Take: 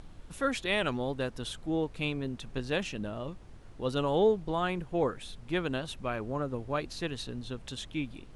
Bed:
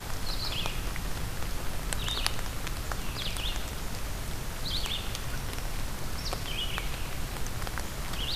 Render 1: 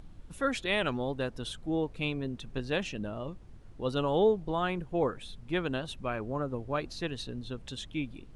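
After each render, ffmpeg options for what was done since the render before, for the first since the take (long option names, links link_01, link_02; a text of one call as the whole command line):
ffmpeg -i in.wav -af "afftdn=noise_reduction=6:noise_floor=-50" out.wav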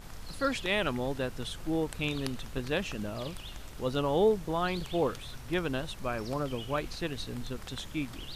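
ffmpeg -i in.wav -i bed.wav -filter_complex "[1:a]volume=-11.5dB[link_01];[0:a][link_01]amix=inputs=2:normalize=0" out.wav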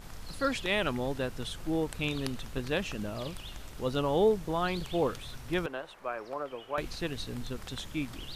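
ffmpeg -i in.wav -filter_complex "[0:a]asettb=1/sr,asplit=3[link_01][link_02][link_03];[link_01]atrim=end=5.664[link_04];[link_02]atrim=start=5.66:end=6.78,asetpts=PTS-STARTPTS,afade=type=in:duration=0.004:curve=qsin,afade=type=out:start_time=1.116:duration=0.004:curve=qsin,acrossover=split=380 2300:gain=0.0794 1 0.2[link_05][link_06][link_07];[link_05][link_06][link_07]amix=inputs=3:normalize=0[link_08];[link_03]atrim=start=6.776[link_09];[link_04][link_08]acrossfade=duration=0.004:curve1=hsin:curve2=qsin[link_10];[link_10][link_09]acrossfade=duration=0.004:curve1=qsin:curve2=hsin" out.wav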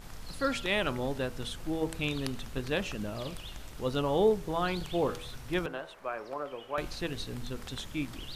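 ffmpeg -i in.wav -af "bandreject=frequency=81.25:width_type=h:width=4,bandreject=frequency=162.5:width_type=h:width=4,bandreject=frequency=243.75:width_type=h:width=4,bandreject=frequency=325:width_type=h:width=4,bandreject=frequency=406.25:width_type=h:width=4,bandreject=frequency=487.5:width_type=h:width=4,bandreject=frequency=568.75:width_type=h:width=4,bandreject=frequency=650:width_type=h:width=4,bandreject=frequency=731.25:width_type=h:width=4,bandreject=frequency=812.5:width_type=h:width=4,bandreject=frequency=893.75:width_type=h:width=4,bandreject=frequency=975:width_type=h:width=4,bandreject=frequency=1056.25:width_type=h:width=4,bandreject=frequency=1137.5:width_type=h:width=4,bandreject=frequency=1218.75:width_type=h:width=4,bandreject=frequency=1300:width_type=h:width=4,bandreject=frequency=1381.25:width_type=h:width=4,bandreject=frequency=1462.5:width_type=h:width=4,bandreject=frequency=1543.75:width_type=h:width=4" out.wav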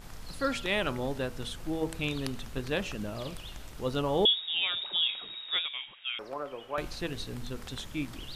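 ffmpeg -i in.wav -filter_complex "[0:a]asettb=1/sr,asplit=3[link_01][link_02][link_03];[link_01]atrim=end=4.254[link_04];[link_02]atrim=start=4.25:end=6.19,asetpts=PTS-STARTPTS,afade=type=in:duration=0.004:curve=qsin,afade=type=out:start_time=1.936:duration=0.004:curve=qsin,lowpass=frequency=3200:width_type=q:width=0.5098,lowpass=frequency=3200:width_type=q:width=0.6013,lowpass=frequency=3200:width_type=q:width=0.9,lowpass=frequency=3200:width_type=q:width=2.563,afreqshift=-3800[link_05];[link_03]atrim=start=6.186[link_06];[link_04][link_05]acrossfade=duration=0.004:curve1=hsin:curve2=qsin[link_07];[link_07][link_06]acrossfade=duration=0.004:curve1=qsin:curve2=hsin" out.wav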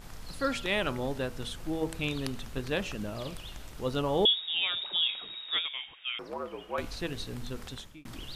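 ffmpeg -i in.wav -filter_complex "[0:a]asettb=1/sr,asplit=3[link_01][link_02][link_03];[link_01]atrim=end=5.544[link_04];[link_02]atrim=start=5.54:end=6.96,asetpts=PTS-STARTPTS,afade=type=in:duration=0.004:curve=qsin,afade=type=out:start_time=1.416:duration=0.004:curve=qsin,afreqshift=-58[link_05];[link_03]atrim=start=6.956[link_06];[link_04][link_05]acrossfade=duration=0.004:curve1=hsin:curve2=qsin[link_07];[link_07][link_06]acrossfade=duration=0.004:curve1=qsin:curve2=hsin,asplit=2[link_08][link_09];[link_08]atrim=end=8.05,asetpts=PTS-STARTPTS,afade=type=out:start_time=7.64:duration=0.41[link_10];[link_09]atrim=start=8.05,asetpts=PTS-STARTPTS,afade=type=in:duration=0.004:curve=hsin[link_11];[link_10][link_11]concat=n=2:v=0:a=1" out.wav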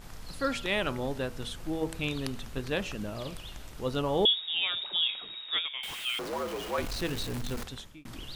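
ffmpeg -i in.wav -filter_complex "[0:a]asettb=1/sr,asplit=3[link_01][link_02][link_03];[link_01]atrim=end=5.834[link_04];[link_02]atrim=start=5.83:end=7.64,asetpts=PTS-STARTPTS,afade=type=in:duration=0.004:curve=qsin,afade=type=out:start_time=1.806:duration=0.004:curve=qsin,aeval=exprs='val(0)+0.5*0.0188*sgn(val(0))':channel_layout=same[link_05];[link_03]atrim=start=7.636[link_06];[link_04][link_05]acrossfade=duration=0.004:curve1=hsin:curve2=qsin[link_07];[link_07][link_06]acrossfade=duration=0.004:curve1=qsin:curve2=hsin" out.wav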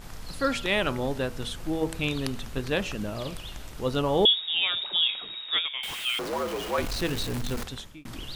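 ffmpeg -i in.wav -af "volume=4dB" out.wav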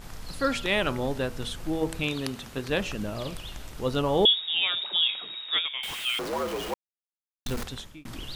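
ffmpeg -i in.wav -filter_complex "[0:a]asettb=1/sr,asplit=3[link_01][link_02][link_03];[link_01]atrim=end=2.034[link_04];[link_02]atrim=start=2.03:end=2.7,asetpts=PTS-STARTPTS,afade=type=in:duration=0.004:curve=qsin,afade=type=out:start_time=0.666:duration=0.004:curve=qsin,highpass=frequency=140:poles=1[link_05];[link_03]atrim=start=2.696[link_06];[link_04][link_05]acrossfade=duration=0.004:curve1=hsin:curve2=qsin[link_07];[link_07][link_06]acrossfade=duration=0.004:curve1=qsin:curve2=hsin,asettb=1/sr,asplit=3[link_08][link_09][link_10];[link_08]atrim=end=4.714[link_11];[link_09]atrim=start=4.71:end=5.56,asetpts=PTS-STARTPTS,afade=type=in:duration=0.004:curve=qsin,afade=type=out:start_time=0.846:duration=0.004:curve=qsin,highpass=frequency=140:poles=1[link_12];[link_10]atrim=start=5.556[link_13];[link_11][link_12]acrossfade=duration=0.004:curve1=hsin:curve2=qsin[link_14];[link_14][link_13]acrossfade=duration=0.004:curve1=qsin:curve2=hsin,asplit=3[link_15][link_16][link_17];[link_15]atrim=end=6.74,asetpts=PTS-STARTPTS,afade=type=out:start_time=6.736:duration=0.004:curve=hsin[link_18];[link_16]atrim=start=6.74:end=7.46,asetpts=PTS-STARTPTS,volume=0[link_19];[link_17]atrim=start=7.46,asetpts=PTS-STARTPTS,afade=type=in:duration=0.004:curve=hsin[link_20];[link_18][link_19][link_20]concat=n=3:v=0:a=1" out.wav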